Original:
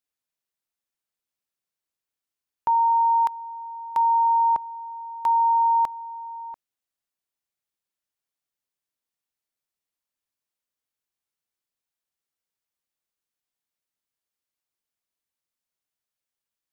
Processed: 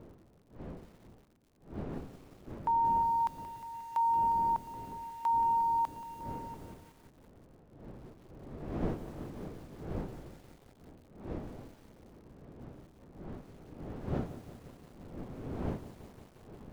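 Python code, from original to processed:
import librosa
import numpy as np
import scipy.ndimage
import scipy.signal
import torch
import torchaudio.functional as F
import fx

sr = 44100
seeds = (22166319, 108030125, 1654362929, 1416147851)

y = fx.dmg_wind(x, sr, seeds[0], corner_hz=330.0, level_db=-36.0)
y = fx.dmg_crackle(y, sr, seeds[1], per_s=98.0, level_db=-48.0)
y = fx.echo_crushed(y, sr, ms=178, feedback_pct=80, bits=7, wet_db=-13)
y = y * librosa.db_to_amplitude(-8.5)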